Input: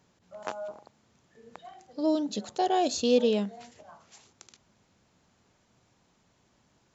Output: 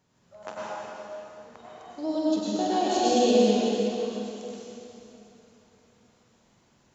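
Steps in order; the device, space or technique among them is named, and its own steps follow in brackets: tunnel (flutter echo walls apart 8.1 m, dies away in 0.31 s; reverberation RT60 3.2 s, pre-delay 90 ms, DRR -7.5 dB); trim -5 dB

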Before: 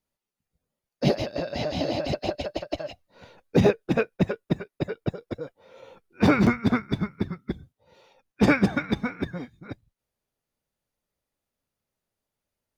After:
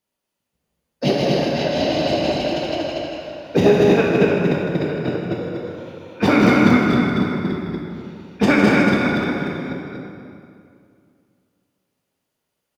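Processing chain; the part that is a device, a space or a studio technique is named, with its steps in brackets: stadium PA (high-pass 160 Hz 6 dB/octave; peaking EQ 3 kHz +4 dB 0.22 oct; loudspeakers at several distances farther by 54 m -9 dB, 81 m -3 dB; reverberation RT60 2.4 s, pre-delay 12 ms, DRR -1.5 dB); trim +3 dB

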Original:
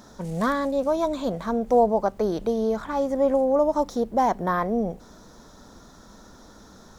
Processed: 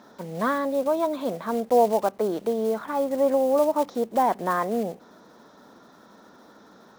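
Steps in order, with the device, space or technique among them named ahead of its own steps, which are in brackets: early digital voice recorder (band-pass 230–3400 Hz; block-companded coder 5-bit)

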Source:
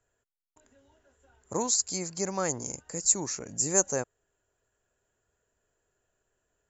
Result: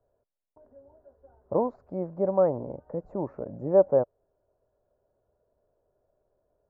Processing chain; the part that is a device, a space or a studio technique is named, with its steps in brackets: under water (low-pass 1 kHz 24 dB/octave; peaking EQ 580 Hz +11 dB 0.39 oct); trim +3 dB

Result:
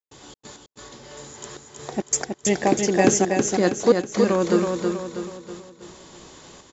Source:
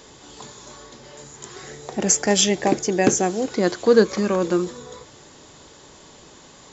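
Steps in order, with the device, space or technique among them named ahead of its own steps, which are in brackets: trance gate with a delay (trance gate ".xx.x..xxxxxxx." 134 bpm -60 dB; feedback delay 322 ms, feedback 46%, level -4.5 dB)

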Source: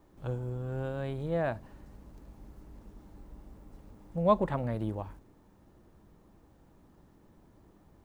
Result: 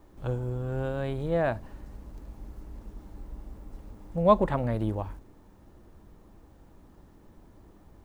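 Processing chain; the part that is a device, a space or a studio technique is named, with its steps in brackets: low shelf boost with a cut just above (bass shelf 64 Hz +6.5 dB; peaking EQ 150 Hz -3 dB 0.77 oct); trim +4.5 dB

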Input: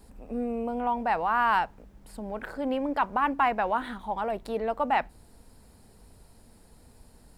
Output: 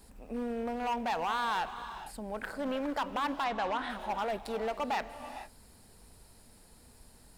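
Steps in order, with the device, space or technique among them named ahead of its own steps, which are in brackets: limiter into clipper (peak limiter -20 dBFS, peak gain reduction 7.5 dB; hard clipper -25.5 dBFS, distortion -14 dB); tilt shelf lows -3.5 dB, about 1.2 kHz; gated-style reverb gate 480 ms rising, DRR 10.5 dB; 3.44–3.90 s: Bessel low-pass 5.8 kHz, order 2; trim -1 dB

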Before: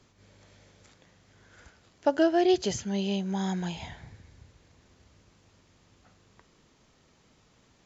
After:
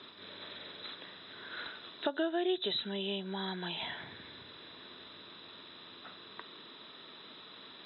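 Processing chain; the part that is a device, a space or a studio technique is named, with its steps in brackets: hearing aid with frequency lowering (knee-point frequency compression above 3.3 kHz 4:1; compression 3:1, threshold -47 dBFS, peak gain reduction 20.5 dB; cabinet simulation 390–6800 Hz, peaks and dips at 520 Hz -7 dB, 780 Hz -9 dB, 2.2 kHz -5 dB); trim +15 dB

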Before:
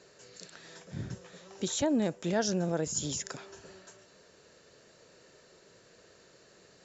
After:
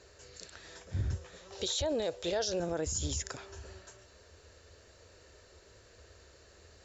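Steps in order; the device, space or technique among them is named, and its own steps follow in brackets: 1.52–2.60 s: graphic EQ 250/500/4000 Hz -9/+10/+12 dB; car stereo with a boomy subwoofer (resonant low shelf 110 Hz +12.5 dB, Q 3; peak limiter -24.5 dBFS, peak gain reduction 11 dB)

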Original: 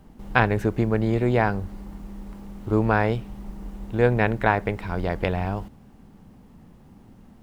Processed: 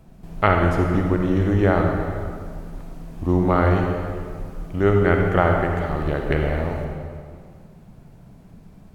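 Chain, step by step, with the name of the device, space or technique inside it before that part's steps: slowed and reverbed (tape speed -17%; reverberation RT60 2.0 s, pre-delay 44 ms, DRR 1.5 dB); trim +1 dB

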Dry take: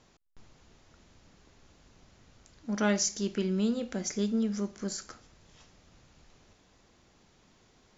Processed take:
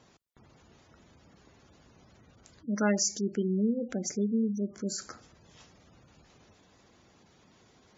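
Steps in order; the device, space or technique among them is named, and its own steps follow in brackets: high-pass 70 Hz 12 dB/octave; parallel compression (in parallel at -8 dB: compression, threshold -38 dBFS, peak gain reduction 14.5 dB); on the sum: spectral gate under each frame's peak -20 dB strong; 4.04–4.68 s: peaking EQ 2.3 kHz -7 dB 1.8 oct

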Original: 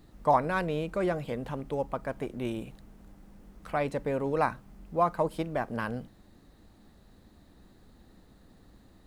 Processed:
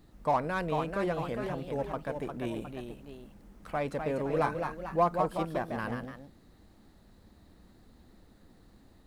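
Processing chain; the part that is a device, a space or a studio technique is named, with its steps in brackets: parallel distortion (in parallel at -6 dB: hard clipper -25.5 dBFS, distortion -9 dB); 4.32–5.08 s: on the sum: comb 5.9 ms, depth 64%; ever faster or slower copies 462 ms, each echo +1 st, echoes 2, each echo -6 dB; trim -6 dB

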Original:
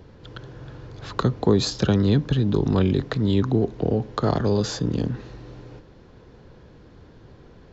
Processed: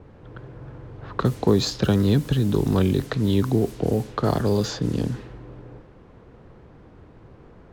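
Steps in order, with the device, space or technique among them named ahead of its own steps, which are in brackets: cassette deck with a dynamic noise filter (white noise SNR 22 dB; level-controlled noise filter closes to 910 Hz, open at -17.5 dBFS)

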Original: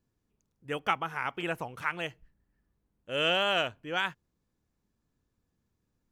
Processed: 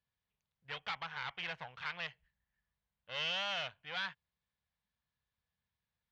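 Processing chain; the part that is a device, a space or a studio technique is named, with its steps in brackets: scooped metal amplifier (valve stage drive 34 dB, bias 0.75; cabinet simulation 100–3700 Hz, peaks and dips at 110 Hz -7 dB, 370 Hz -4 dB, 1.3 kHz -5 dB, 2.6 kHz -4 dB; amplifier tone stack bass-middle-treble 10-0-10); trim +9 dB

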